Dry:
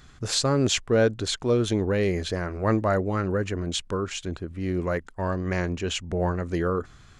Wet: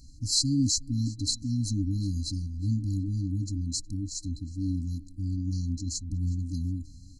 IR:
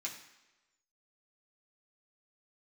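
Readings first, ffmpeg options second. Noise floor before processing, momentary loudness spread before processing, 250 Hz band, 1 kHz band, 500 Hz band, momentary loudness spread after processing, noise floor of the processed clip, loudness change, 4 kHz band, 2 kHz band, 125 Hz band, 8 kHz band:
−51 dBFS, 8 LU, −3.5 dB, below −40 dB, below −30 dB, 9 LU, −48 dBFS, −4.0 dB, −2.0 dB, below −40 dB, 0.0 dB, +1.0 dB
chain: -af "aecho=1:1:2.7:0.6,aecho=1:1:365|730:0.075|0.024,afftfilt=real='re*(1-between(b*sr/4096,310,4000))':imag='im*(1-between(b*sr/4096,310,4000))':win_size=4096:overlap=0.75"

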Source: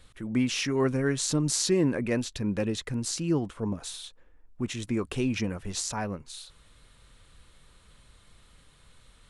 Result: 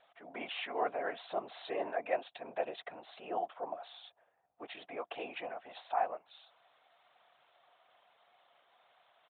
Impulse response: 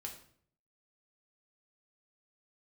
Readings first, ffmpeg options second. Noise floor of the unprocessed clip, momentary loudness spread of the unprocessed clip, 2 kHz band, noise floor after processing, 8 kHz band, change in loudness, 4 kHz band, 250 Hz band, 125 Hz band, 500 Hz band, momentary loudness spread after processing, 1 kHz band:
−59 dBFS, 11 LU, −7.0 dB, −75 dBFS, below −40 dB, −10.5 dB, −13.0 dB, −23.0 dB, below −35 dB, −7.0 dB, 15 LU, +4.0 dB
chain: -af "afftfilt=real='hypot(re,im)*cos(2*PI*random(0))':imag='hypot(re,im)*sin(2*PI*random(1))':win_size=512:overlap=0.75,highpass=frequency=710:width_type=q:width=8.3,aresample=8000,aresample=44100,volume=-2dB"

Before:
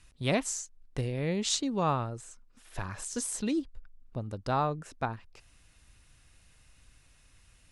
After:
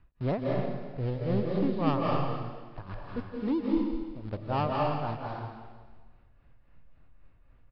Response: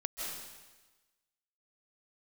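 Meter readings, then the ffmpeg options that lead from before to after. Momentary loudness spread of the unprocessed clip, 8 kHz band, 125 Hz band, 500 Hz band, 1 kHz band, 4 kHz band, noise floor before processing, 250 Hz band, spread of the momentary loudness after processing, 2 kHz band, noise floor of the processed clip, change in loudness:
14 LU, below −40 dB, +3.0 dB, +3.0 dB, +1.0 dB, −9.0 dB, −62 dBFS, +4.0 dB, 13 LU, −3.5 dB, −60 dBFS, +1.0 dB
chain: -filter_complex "[0:a]lowpass=1100,asplit=2[link_01][link_02];[link_02]aeval=exprs='val(0)*gte(abs(val(0)),0.0141)':channel_layout=same,volume=-3dB[link_03];[link_01][link_03]amix=inputs=2:normalize=0,tremolo=f=3.7:d=0.88,aresample=11025,asoftclip=type=tanh:threshold=-25dB,aresample=44100,aecho=1:1:164|328|492|656:0.119|0.063|0.0334|0.0177[link_04];[1:a]atrim=start_sample=2205,asetrate=40131,aresample=44100[link_05];[link_04][link_05]afir=irnorm=-1:irlink=0,volume=2.5dB"

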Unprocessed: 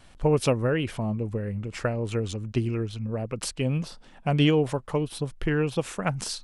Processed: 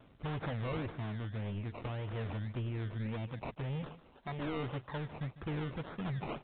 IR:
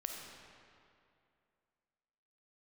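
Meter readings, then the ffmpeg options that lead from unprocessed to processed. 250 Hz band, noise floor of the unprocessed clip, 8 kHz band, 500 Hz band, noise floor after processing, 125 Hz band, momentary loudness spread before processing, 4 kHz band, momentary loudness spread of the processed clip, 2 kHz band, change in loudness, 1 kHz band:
−13.0 dB, −50 dBFS, below −40 dB, −16.0 dB, −61 dBFS, −10.0 dB, 9 LU, −16.0 dB, 4 LU, −11.5 dB, −12.5 dB, −9.5 dB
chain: -af "highpass=frequency=51:width=0.5412,highpass=frequency=51:width=1.3066,equalizer=frequency=66:width_type=o:width=0.6:gain=-7,bandreject=frequency=430:width=12,aphaser=in_gain=1:out_gain=1:delay=1.2:decay=0.43:speed=1.3:type=sinusoidal,crystalizer=i=1:c=0,aresample=16000,volume=26.5dB,asoftclip=hard,volume=-26.5dB,aresample=44100,flanger=delay=0.6:depth=2.5:regen=-55:speed=0.35:shape=sinusoidal,acrusher=samples=21:mix=1:aa=0.000001:lfo=1:lforange=12.6:lforate=1.8,aecho=1:1:150:0.158,volume=-4.5dB" -ar 8000 -c:a pcm_alaw

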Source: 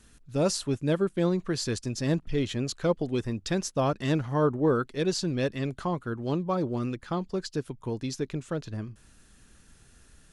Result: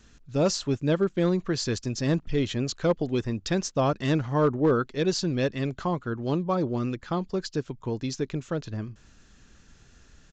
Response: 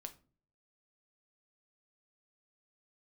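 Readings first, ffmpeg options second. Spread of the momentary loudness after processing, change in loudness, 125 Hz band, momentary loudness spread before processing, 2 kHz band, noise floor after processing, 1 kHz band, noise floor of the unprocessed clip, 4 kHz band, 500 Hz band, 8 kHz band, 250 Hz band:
8 LU, +2.0 dB, +2.0 dB, 8 LU, +2.0 dB, −57 dBFS, +2.0 dB, −58 dBFS, +2.0 dB, +2.0 dB, +0.5 dB, +2.0 dB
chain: -af "volume=17dB,asoftclip=hard,volume=-17dB,aresample=16000,aresample=44100,volume=2dB"

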